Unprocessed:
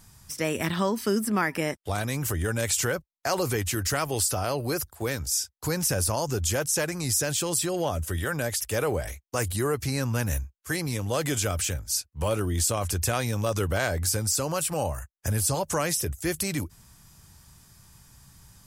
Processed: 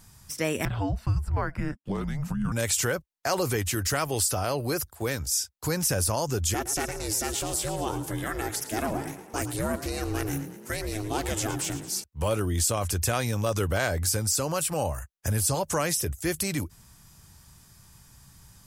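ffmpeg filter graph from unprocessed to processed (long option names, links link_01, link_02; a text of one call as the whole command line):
ffmpeg -i in.wav -filter_complex "[0:a]asettb=1/sr,asplit=3[link_01][link_02][link_03];[link_01]atrim=end=0.654[link_04];[link_02]atrim=start=0.65:end=2.52,asetpts=PTS-STARTPTS,afade=type=in:duration=0.004:curve=qsin,afade=type=out:start_time=1.866:duration=0.004:curve=qsin,lowpass=frequency=1000:poles=1,afreqshift=-290[link_05];[link_03]atrim=start=2.516[link_06];[link_04][link_05]acrossfade=duration=0.004:curve1=hsin:curve2=qsin[link_07];[link_07][link_06]acrossfade=duration=0.004:curve1=qsin:curve2=hsin,asettb=1/sr,asplit=3[link_08][link_09][link_10];[link_08]atrim=end=6.544[link_11];[link_09]atrim=start=6.54:end=12.04,asetpts=PTS-STARTPTS,afade=type=in:duration=0.004:curve=qsin,afade=type=out:start_time=5.496:duration=0.004:curve=qsin,aeval=exprs='val(0)*sin(2*PI*210*n/s)':channel_layout=same,asplit=7[link_12][link_13][link_14][link_15][link_16][link_17][link_18];[link_13]adelay=112,afreqshift=34,volume=-13dB[link_19];[link_14]adelay=224,afreqshift=68,volume=-17.6dB[link_20];[link_15]adelay=336,afreqshift=102,volume=-22.2dB[link_21];[link_16]adelay=448,afreqshift=136,volume=-26.7dB[link_22];[link_17]adelay=560,afreqshift=170,volume=-31.3dB[link_23];[link_18]adelay=672,afreqshift=204,volume=-35.9dB[link_24];[link_12][link_19][link_20][link_21][link_22][link_23][link_24]amix=inputs=7:normalize=0,atrim=end_sample=242550[link_25];[link_10]atrim=start=12.036[link_26];[link_11][link_25]acrossfade=duration=0.004:curve1=hsin:curve2=qsin[link_27];[link_27][link_26]acrossfade=duration=0.004:curve1=qsin:curve2=hsin" out.wav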